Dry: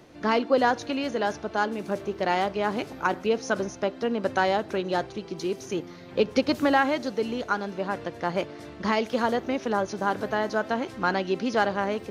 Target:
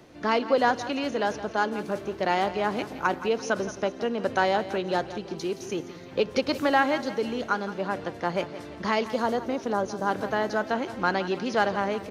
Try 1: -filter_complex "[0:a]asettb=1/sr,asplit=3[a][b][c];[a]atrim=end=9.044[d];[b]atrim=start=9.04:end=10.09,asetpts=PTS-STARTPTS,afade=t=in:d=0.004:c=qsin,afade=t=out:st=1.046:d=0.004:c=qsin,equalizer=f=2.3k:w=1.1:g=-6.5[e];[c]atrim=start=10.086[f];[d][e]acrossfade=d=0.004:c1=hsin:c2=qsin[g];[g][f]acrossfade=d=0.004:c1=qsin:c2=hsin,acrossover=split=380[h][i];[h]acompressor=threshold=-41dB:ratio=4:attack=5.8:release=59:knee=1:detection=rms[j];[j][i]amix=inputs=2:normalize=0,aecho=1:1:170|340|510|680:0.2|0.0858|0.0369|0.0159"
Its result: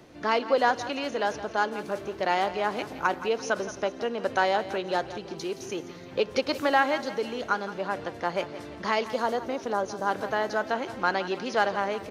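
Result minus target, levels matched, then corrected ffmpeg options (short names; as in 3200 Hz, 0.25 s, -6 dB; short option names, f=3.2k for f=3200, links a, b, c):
compressor: peak gain reduction +7.5 dB
-filter_complex "[0:a]asettb=1/sr,asplit=3[a][b][c];[a]atrim=end=9.044[d];[b]atrim=start=9.04:end=10.09,asetpts=PTS-STARTPTS,afade=t=in:d=0.004:c=qsin,afade=t=out:st=1.046:d=0.004:c=qsin,equalizer=f=2.3k:w=1.1:g=-6.5[e];[c]atrim=start=10.086[f];[d][e]acrossfade=d=0.004:c1=hsin:c2=qsin[g];[g][f]acrossfade=d=0.004:c1=qsin:c2=hsin,acrossover=split=380[h][i];[h]acompressor=threshold=-31dB:ratio=4:attack=5.8:release=59:knee=1:detection=rms[j];[j][i]amix=inputs=2:normalize=0,aecho=1:1:170|340|510|680:0.2|0.0858|0.0369|0.0159"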